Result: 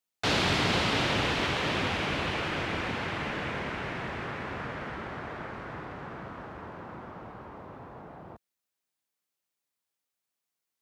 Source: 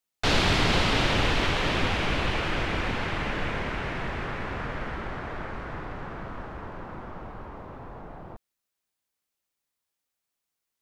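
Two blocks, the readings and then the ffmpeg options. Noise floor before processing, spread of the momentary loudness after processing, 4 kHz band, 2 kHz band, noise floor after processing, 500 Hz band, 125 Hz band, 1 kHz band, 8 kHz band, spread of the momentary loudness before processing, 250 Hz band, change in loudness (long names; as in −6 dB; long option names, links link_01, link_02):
−85 dBFS, 20 LU, −2.5 dB, −2.5 dB, below −85 dBFS, −2.5 dB, −4.5 dB, −2.5 dB, −2.5 dB, 19 LU, −2.5 dB, −3.0 dB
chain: -af "highpass=93,volume=-2.5dB"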